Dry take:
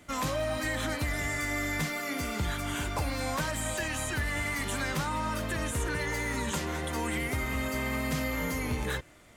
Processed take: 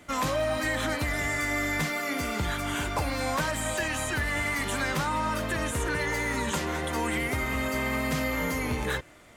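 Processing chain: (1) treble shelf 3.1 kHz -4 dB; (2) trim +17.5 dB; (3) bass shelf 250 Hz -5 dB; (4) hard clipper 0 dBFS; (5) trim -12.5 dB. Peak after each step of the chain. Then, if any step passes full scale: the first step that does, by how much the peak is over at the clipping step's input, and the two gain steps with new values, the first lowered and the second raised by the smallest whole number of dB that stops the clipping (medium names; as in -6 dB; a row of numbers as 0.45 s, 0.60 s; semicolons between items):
-23.0 dBFS, -5.5 dBFS, -6.0 dBFS, -6.0 dBFS, -18.5 dBFS; nothing clips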